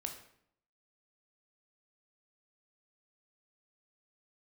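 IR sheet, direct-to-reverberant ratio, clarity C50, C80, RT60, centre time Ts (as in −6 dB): 3.5 dB, 8.0 dB, 11.0 dB, 0.65 s, 19 ms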